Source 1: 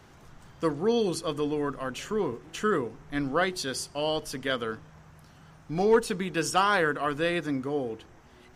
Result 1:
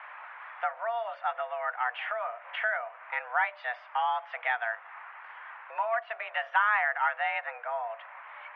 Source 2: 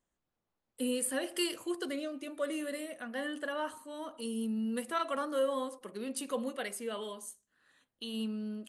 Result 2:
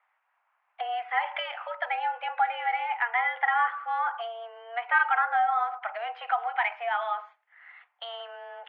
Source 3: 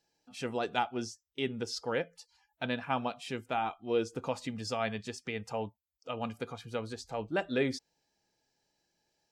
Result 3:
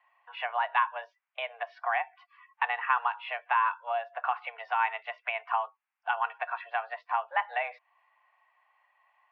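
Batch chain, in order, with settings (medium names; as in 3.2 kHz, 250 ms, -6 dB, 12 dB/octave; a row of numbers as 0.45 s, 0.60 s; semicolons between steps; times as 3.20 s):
compression 3:1, threshold -40 dBFS; mistuned SSB +230 Hz 560–2300 Hz; peak normalisation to -12 dBFS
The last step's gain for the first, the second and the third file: +14.0 dB, +19.0 dB, +16.0 dB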